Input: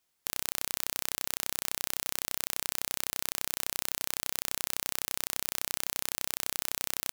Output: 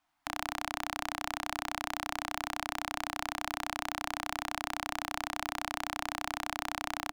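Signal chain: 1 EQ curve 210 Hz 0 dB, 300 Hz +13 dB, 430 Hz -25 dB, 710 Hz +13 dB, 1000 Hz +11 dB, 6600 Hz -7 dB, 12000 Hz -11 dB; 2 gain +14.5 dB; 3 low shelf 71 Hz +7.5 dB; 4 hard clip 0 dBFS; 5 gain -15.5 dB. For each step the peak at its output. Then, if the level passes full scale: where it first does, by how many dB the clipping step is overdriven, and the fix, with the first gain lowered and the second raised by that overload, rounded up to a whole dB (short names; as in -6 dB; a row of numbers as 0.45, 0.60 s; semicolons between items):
-11.0, +3.5, +3.5, 0.0, -15.5 dBFS; step 2, 3.5 dB; step 2 +10.5 dB, step 5 -11.5 dB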